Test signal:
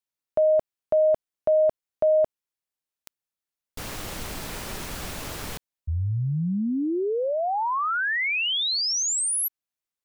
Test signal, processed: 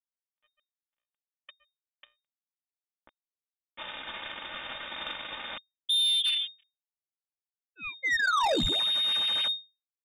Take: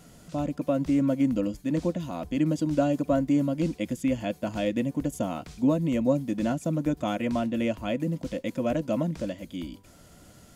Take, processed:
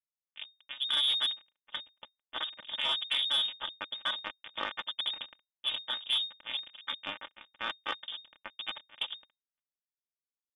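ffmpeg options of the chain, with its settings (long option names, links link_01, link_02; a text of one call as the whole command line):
ffmpeg -i in.wav -filter_complex "[0:a]highpass=76,bandreject=frequency=60:width_type=h:width=6,bandreject=frequency=120:width_type=h:width=6,bandreject=frequency=180:width_type=h:width=6,bandreject=frequency=240:width_type=h:width=6,bandreject=frequency=300:width_type=h:width=6,acrossover=split=100|860|2200[link_01][link_02][link_03][link_04];[link_04]dynaudnorm=framelen=170:gausssize=9:maxgain=13.5dB[link_05];[link_01][link_02][link_03][link_05]amix=inputs=4:normalize=0,flanger=delay=6.6:depth=7.6:regen=-24:speed=0.48:shape=sinusoidal,equalizer=frequency=500:width=1.4:gain=-12,aeval=exprs='0.355*(cos(1*acos(clip(val(0)/0.355,-1,1)))-cos(1*PI/2))+0.0178*(cos(2*acos(clip(val(0)/0.355,-1,1)))-cos(2*PI/2))+0.0141*(cos(7*acos(clip(val(0)/0.355,-1,1)))-cos(7*PI/2))':channel_layout=same,lowshelf=frequency=170:width_type=q:width=1.5:gain=11.5,acrusher=bits=3:mix=0:aa=0.5,aecho=1:1:3.2:0.67,lowpass=frequency=3100:width_type=q:width=0.5098,lowpass=frequency=3100:width_type=q:width=0.6013,lowpass=frequency=3100:width_type=q:width=0.9,lowpass=frequency=3100:width_type=q:width=2.563,afreqshift=-3700,asoftclip=type=tanh:threshold=-20.5dB,acompressor=threshold=-29dB:ratio=3:attack=3.6:release=78:knee=6,volume=3.5dB" out.wav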